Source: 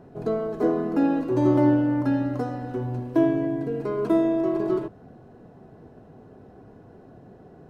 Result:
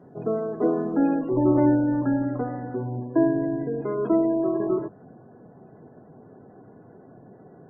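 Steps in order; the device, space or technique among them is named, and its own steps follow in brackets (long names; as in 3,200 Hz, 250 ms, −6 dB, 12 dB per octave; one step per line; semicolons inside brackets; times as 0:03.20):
noise-suppressed video call (high-pass filter 110 Hz 24 dB per octave; gate on every frequency bin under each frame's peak −30 dB strong; Opus 32 kbit/s 48,000 Hz)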